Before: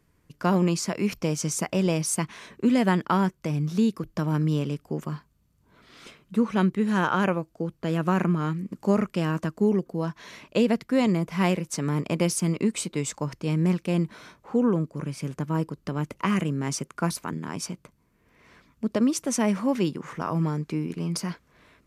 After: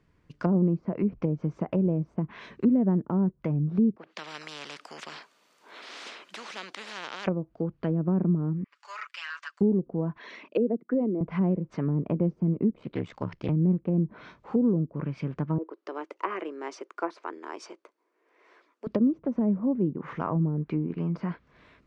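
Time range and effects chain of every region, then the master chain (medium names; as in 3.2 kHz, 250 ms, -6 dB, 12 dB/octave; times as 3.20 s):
3.96–7.27 s: Bessel high-pass 630 Hz, order 4 + treble shelf 11 kHz +11 dB + spectrum-flattening compressor 4:1
8.64–9.61 s: high-pass 1.3 kHz 24 dB/octave + comb 6.9 ms, depth 71% + transformer saturation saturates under 1.9 kHz
10.18–11.21 s: resonances exaggerated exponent 1.5 + high-pass 240 Hz 24 dB/octave
12.70–13.49 s: peaking EQ 3.2 kHz +2.5 dB 0.27 oct + ring modulator 34 Hz + loudspeaker Doppler distortion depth 0.18 ms
15.58–18.87 s: elliptic high-pass 340 Hz, stop band 70 dB + peaking EQ 3.1 kHz -5.5 dB 1.9 oct
whole clip: low-pass that closes with the level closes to 410 Hz, closed at -22 dBFS; low-pass 4.3 kHz 12 dB/octave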